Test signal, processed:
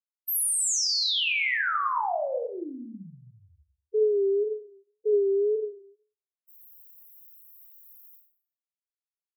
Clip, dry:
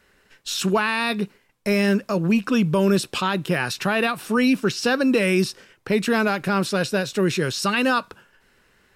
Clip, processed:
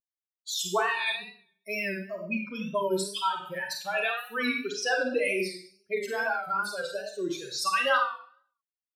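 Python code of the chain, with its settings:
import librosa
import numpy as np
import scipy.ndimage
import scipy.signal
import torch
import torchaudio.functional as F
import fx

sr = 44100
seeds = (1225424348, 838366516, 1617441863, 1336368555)

y = fx.bin_expand(x, sr, power=3.0)
y = scipy.signal.sosfilt(scipy.signal.butter(2, 490.0, 'highpass', fs=sr, output='sos'), y)
y = fx.rev_schroeder(y, sr, rt60_s=0.54, comb_ms=32, drr_db=1.5)
y = fx.wow_flutter(y, sr, seeds[0], rate_hz=2.1, depth_cents=80.0)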